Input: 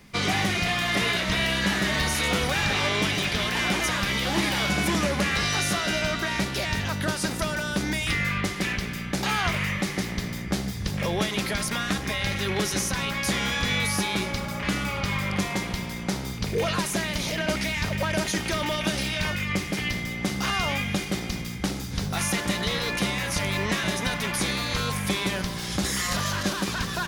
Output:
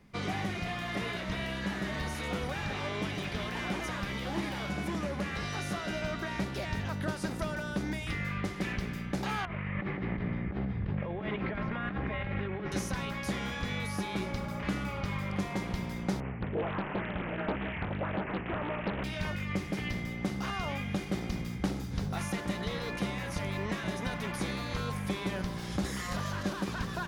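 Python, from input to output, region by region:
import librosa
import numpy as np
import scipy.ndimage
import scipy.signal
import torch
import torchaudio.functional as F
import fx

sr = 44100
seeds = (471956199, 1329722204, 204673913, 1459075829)

y = fx.chain(x, sr, fx.lowpass(hz=2600.0, slope=24),
    fx.over_compress(threshold_db=-31.0, ratio=-1.0), at=(9.45, 12.72))
y = fx.chain(y, sr, fx.highpass(hz=49.0, slope=12),
    fx.resample_bad(factor=8, down='none', up='filtered'),
    fx.doppler_dist(depth_ms=0.86), at=(16.2, 19.04))
y = fx.high_shelf(y, sr, hz=2100.0, db=-11.0)
y = fx.rider(y, sr, range_db=10, speed_s=0.5)
y = y * 10.0 ** (-5.5 / 20.0)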